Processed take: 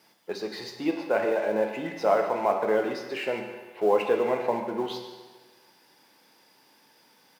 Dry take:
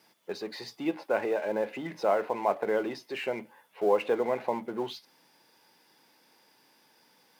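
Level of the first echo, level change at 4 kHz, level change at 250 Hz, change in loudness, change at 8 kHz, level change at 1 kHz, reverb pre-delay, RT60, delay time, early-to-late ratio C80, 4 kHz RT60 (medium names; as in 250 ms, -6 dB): -14.0 dB, +3.5 dB, +3.5 dB, +3.5 dB, no reading, +3.5 dB, 10 ms, 1.4 s, 149 ms, 7.0 dB, 1.3 s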